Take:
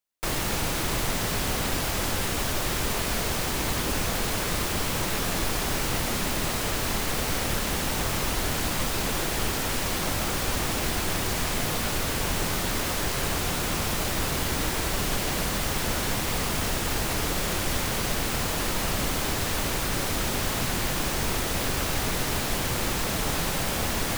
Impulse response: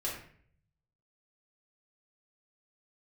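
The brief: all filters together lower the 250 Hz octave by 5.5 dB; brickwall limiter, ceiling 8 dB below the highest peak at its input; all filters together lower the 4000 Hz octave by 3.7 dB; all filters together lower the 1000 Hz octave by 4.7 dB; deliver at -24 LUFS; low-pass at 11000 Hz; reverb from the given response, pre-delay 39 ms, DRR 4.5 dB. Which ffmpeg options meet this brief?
-filter_complex "[0:a]lowpass=11k,equalizer=f=250:t=o:g=-7.5,equalizer=f=1k:t=o:g=-5.5,equalizer=f=4k:t=o:g=-4.5,alimiter=limit=-23dB:level=0:latency=1,asplit=2[a][b];[1:a]atrim=start_sample=2205,adelay=39[c];[b][c]afir=irnorm=-1:irlink=0,volume=-8dB[d];[a][d]amix=inputs=2:normalize=0,volume=7.5dB"

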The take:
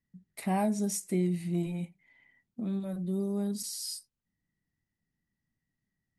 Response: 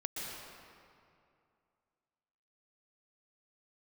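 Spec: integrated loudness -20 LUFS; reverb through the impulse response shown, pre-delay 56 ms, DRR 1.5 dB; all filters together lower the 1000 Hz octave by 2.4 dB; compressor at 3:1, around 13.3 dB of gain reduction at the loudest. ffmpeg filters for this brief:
-filter_complex "[0:a]equalizer=f=1k:t=o:g=-3.5,acompressor=threshold=-44dB:ratio=3,asplit=2[a][b];[1:a]atrim=start_sample=2205,adelay=56[c];[b][c]afir=irnorm=-1:irlink=0,volume=-3.5dB[d];[a][d]amix=inputs=2:normalize=0,volume=22dB"

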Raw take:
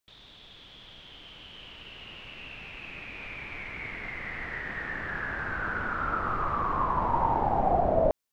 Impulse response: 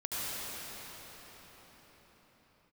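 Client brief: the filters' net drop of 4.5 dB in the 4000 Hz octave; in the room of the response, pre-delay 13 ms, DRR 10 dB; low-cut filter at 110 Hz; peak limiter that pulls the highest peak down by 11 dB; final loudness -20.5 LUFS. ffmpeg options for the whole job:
-filter_complex "[0:a]highpass=110,equalizer=f=4k:t=o:g=-7,alimiter=limit=-23.5dB:level=0:latency=1,asplit=2[a][b];[1:a]atrim=start_sample=2205,adelay=13[c];[b][c]afir=irnorm=-1:irlink=0,volume=-17dB[d];[a][d]amix=inputs=2:normalize=0,volume=13dB"

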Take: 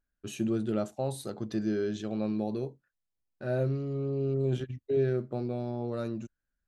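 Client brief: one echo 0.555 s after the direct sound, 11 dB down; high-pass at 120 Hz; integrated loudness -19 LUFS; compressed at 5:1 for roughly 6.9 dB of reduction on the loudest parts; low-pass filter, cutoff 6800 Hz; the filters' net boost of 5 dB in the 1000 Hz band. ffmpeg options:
-af "highpass=120,lowpass=6.8k,equalizer=f=1k:t=o:g=7.5,acompressor=threshold=-31dB:ratio=5,aecho=1:1:555:0.282,volume=17.5dB"

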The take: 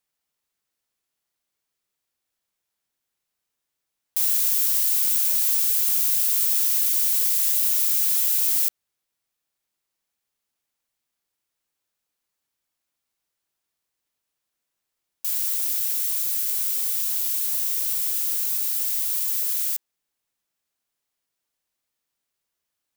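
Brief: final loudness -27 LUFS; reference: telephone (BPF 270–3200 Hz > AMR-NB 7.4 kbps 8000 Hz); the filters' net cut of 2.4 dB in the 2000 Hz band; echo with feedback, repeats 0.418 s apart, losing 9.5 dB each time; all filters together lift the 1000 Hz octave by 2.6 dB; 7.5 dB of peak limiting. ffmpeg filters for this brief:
-af "equalizer=f=1k:t=o:g=4.5,equalizer=f=2k:t=o:g=-3,alimiter=limit=-15.5dB:level=0:latency=1,highpass=270,lowpass=3.2k,aecho=1:1:418|836|1254|1672:0.335|0.111|0.0365|0.012,volume=26dB" -ar 8000 -c:a libopencore_amrnb -b:a 7400

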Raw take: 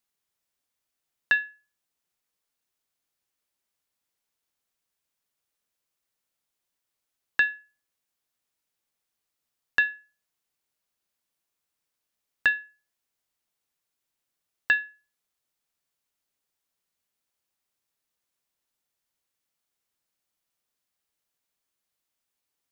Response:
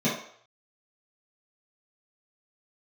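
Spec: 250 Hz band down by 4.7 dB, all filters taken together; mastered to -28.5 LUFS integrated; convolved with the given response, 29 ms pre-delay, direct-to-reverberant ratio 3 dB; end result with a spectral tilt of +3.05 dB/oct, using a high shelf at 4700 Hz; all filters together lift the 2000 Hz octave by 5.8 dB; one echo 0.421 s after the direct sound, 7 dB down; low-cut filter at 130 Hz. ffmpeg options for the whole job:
-filter_complex "[0:a]highpass=130,equalizer=f=250:t=o:g=-6,equalizer=f=2k:t=o:g=8,highshelf=f=4.7k:g=-5,aecho=1:1:421:0.447,asplit=2[a][b];[1:a]atrim=start_sample=2205,adelay=29[c];[b][c]afir=irnorm=-1:irlink=0,volume=-15.5dB[d];[a][d]amix=inputs=2:normalize=0,volume=-7dB"

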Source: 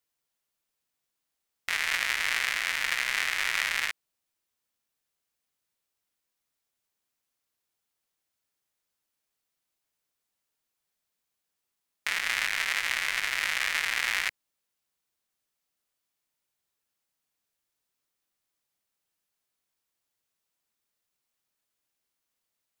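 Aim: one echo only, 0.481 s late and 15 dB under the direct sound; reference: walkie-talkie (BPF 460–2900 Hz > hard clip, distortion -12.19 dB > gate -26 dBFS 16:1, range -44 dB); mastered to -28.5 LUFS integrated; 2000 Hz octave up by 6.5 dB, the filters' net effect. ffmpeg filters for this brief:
-af "highpass=460,lowpass=2.9k,equalizer=f=2k:t=o:g=8.5,aecho=1:1:481:0.178,asoftclip=type=hard:threshold=-16dB,agate=range=-44dB:threshold=-26dB:ratio=16,volume=-5dB"

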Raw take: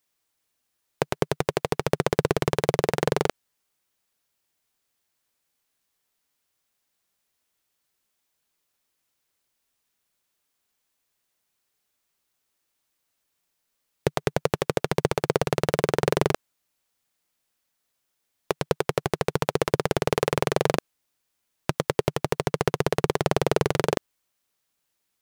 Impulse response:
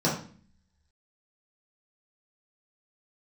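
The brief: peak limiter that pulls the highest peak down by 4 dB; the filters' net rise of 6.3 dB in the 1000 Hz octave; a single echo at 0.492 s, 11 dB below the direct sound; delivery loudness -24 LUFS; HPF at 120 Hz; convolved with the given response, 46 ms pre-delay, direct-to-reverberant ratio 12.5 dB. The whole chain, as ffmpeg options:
-filter_complex "[0:a]highpass=120,equalizer=f=1k:t=o:g=8,alimiter=limit=-5.5dB:level=0:latency=1,aecho=1:1:492:0.282,asplit=2[a][b];[1:a]atrim=start_sample=2205,adelay=46[c];[b][c]afir=irnorm=-1:irlink=0,volume=-25dB[d];[a][d]amix=inputs=2:normalize=0,volume=1.5dB"

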